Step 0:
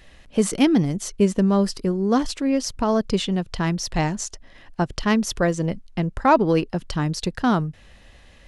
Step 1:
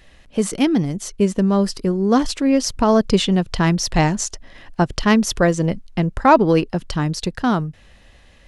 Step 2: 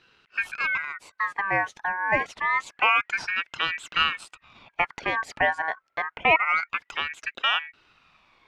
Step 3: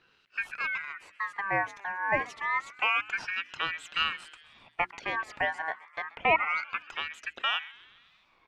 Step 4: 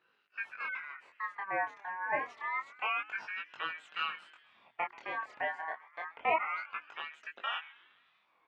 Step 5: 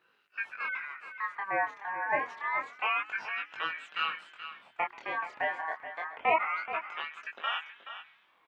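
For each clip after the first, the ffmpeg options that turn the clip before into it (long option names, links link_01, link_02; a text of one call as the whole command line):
ffmpeg -i in.wav -af "dynaudnorm=framelen=330:gausssize=11:maxgain=11.5dB" out.wav
ffmpeg -i in.wav -af "alimiter=limit=-9.5dB:level=0:latency=1:release=21,bandpass=frequency=730:width_type=q:width=1.4:csg=0,aeval=exprs='val(0)*sin(2*PI*1700*n/s+1700*0.25/0.27*sin(2*PI*0.27*n/s))':channel_layout=same,volume=3.5dB" out.wav
ffmpeg -i in.wav -filter_complex "[0:a]bandreject=frequency=60:width_type=h:width=6,bandreject=frequency=120:width_type=h:width=6,bandreject=frequency=180:width_type=h:width=6,bandreject=frequency=240:width_type=h:width=6,bandreject=frequency=300:width_type=h:width=6,bandreject=frequency=360:width_type=h:width=6,acrossover=split=2300[link_01][link_02];[link_01]aeval=exprs='val(0)*(1-0.5/2+0.5/2*cos(2*PI*1.9*n/s))':channel_layout=same[link_03];[link_02]aeval=exprs='val(0)*(1-0.5/2-0.5/2*cos(2*PI*1.9*n/s))':channel_layout=same[link_04];[link_03][link_04]amix=inputs=2:normalize=0,asplit=6[link_05][link_06][link_07][link_08][link_09][link_10];[link_06]adelay=131,afreqshift=130,volume=-21dB[link_11];[link_07]adelay=262,afreqshift=260,volume=-25.6dB[link_12];[link_08]adelay=393,afreqshift=390,volume=-30.2dB[link_13];[link_09]adelay=524,afreqshift=520,volume=-34.7dB[link_14];[link_10]adelay=655,afreqshift=650,volume=-39.3dB[link_15];[link_05][link_11][link_12][link_13][link_14][link_15]amix=inputs=6:normalize=0,volume=-3dB" out.wav
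ffmpeg -i in.wav -af "flanger=delay=19:depth=7.5:speed=0.28,bandpass=frequency=890:width_type=q:width=0.51:csg=0,volume=-1.5dB" out.wav
ffmpeg -i in.wav -af "aecho=1:1:427:0.266,volume=3.5dB" out.wav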